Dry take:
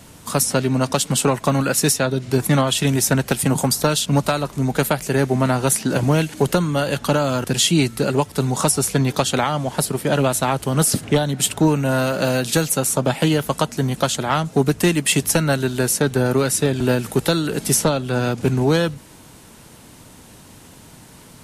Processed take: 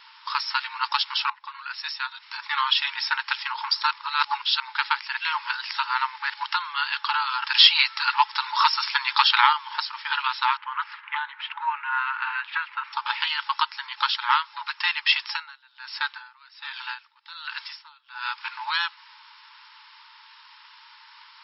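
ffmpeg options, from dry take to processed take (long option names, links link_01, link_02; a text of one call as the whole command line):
ffmpeg -i in.wav -filter_complex "[0:a]asettb=1/sr,asplit=3[link_01][link_02][link_03];[link_01]atrim=end=7.424[link_04];[link_02]atrim=start=7.42:end=9.53,asetpts=PTS-STARTPTS,afade=type=in:duration=0.004:curve=qsin,afade=type=out:start_time=2.106:duration=0.004:curve=qsin,acontrast=41[link_05];[link_03]atrim=start=9.526[link_06];[link_04][link_05]acrossfade=duration=0.004:curve1=hsin:curve2=qsin[link_07];[link_07][link_06]acrossfade=duration=0.004:curve1=qsin:curve2=hsin,asettb=1/sr,asplit=3[link_08][link_09][link_10];[link_08]atrim=end=10.574[link_11];[link_09]atrim=start=10.57:end=12.93,asetpts=PTS-STARTPTS,afade=type=in:duration=0.004:curve=qsin,afade=type=out:start_time=2.356:duration=0.004:curve=qsin,lowpass=frequency=2400:width=0.5412,lowpass=frequency=2400:width=1.3066[link_12];[link_10]atrim=start=12.926[link_13];[link_11][link_12]acrossfade=duration=0.004:curve1=hsin:curve2=qsin[link_14];[link_14][link_13]acrossfade=duration=0.004:curve1=qsin:curve2=hsin,asettb=1/sr,asplit=3[link_15][link_16][link_17];[link_15]atrim=end=15.254[link_18];[link_16]atrim=start=15.25:end=18.29,asetpts=PTS-STARTPTS,afade=type=in:duration=0.004:curve=qsin,afade=type=out:start_time=3.036:duration=0.004:curve=qsin,aeval=exprs='val(0)*pow(10,-27*(0.5-0.5*cos(2*PI*1.3*n/s))/20)':channel_layout=same[link_19];[link_17]atrim=start=18.286[link_20];[link_18][link_19]acrossfade=duration=0.004:curve1=hsin:curve2=qsin[link_21];[link_21][link_20]acrossfade=duration=0.004:curve1=qsin:curve2=hsin,asplit=6[link_22][link_23][link_24][link_25][link_26][link_27];[link_22]atrim=end=1.3,asetpts=PTS-STARTPTS,afade=type=out:start_time=1.296:duration=0.004:curve=hsin:silence=0.0749894[link_28];[link_23]atrim=start=1.3:end=3.912,asetpts=PTS-STARTPTS,afade=type=in:duration=1.45:silence=0.0749894[link_29];[link_24]atrim=start=3.908:end=4.602,asetpts=PTS-STARTPTS,areverse[link_30];[link_25]atrim=start=4.598:end=5.172[link_31];[link_26]atrim=start=5.168:end=6.302,asetpts=PTS-STARTPTS,areverse[link_32];[link_27]atrim=start=6.298[link_33];[link_28][link_29]concat=n=2:v=0:a=1[link_34];[link_34][link_30]acrossfade=duration=0.004:curve1=hsin:curve2=hsin[link_35];[link_35][link_31]acrossfade=duration=0.004:curve1=hsin:curve2=hsin[link_36];[link_36][link_32]acrossfade=duration=0.004:curve1=hsin:curve2=hsin[link_37];[link_37][link_33]acrossfade=duration=0.004:curve1=hsin:curve2=hsin,afftfilt=real='re*between(b*sr/4096,850,5500)':imag='im*between(b*sr/4096,850,5500)':win_size=4096:overlap=0.75,volume=1.5dB" out.wav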